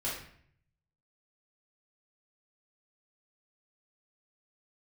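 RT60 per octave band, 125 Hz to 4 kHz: 1.1, 0.75, 0.60, 0.60, 0.60, 0.50 seconds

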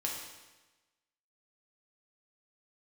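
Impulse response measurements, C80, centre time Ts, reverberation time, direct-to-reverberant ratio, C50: 5.0 dB, 55 ms, 1.2 s, −2.5 dB, 2.5 dB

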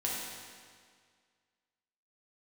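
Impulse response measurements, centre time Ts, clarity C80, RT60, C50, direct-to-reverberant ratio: 110 ms, 1.0 dB, 1.9 s, −1.5 dB, −5.5 dB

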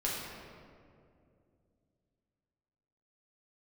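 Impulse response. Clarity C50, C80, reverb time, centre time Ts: −0.5 dB, 1.0 dB, 2.4 s, 117 ms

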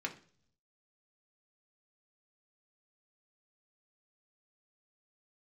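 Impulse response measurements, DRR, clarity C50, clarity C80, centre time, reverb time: 1.0 dB, 14.0 dB, 19.0 dB, 9 ms, 0.50 s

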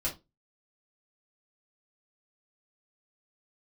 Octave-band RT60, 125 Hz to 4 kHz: 0.35, 0.30, 0.25, 0.20, 0.20, 0.20 seconds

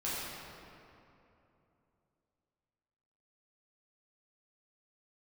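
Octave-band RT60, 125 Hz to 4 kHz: 3.5, 3.3, 3.0, 2.8, 2.3, 1.7 seconds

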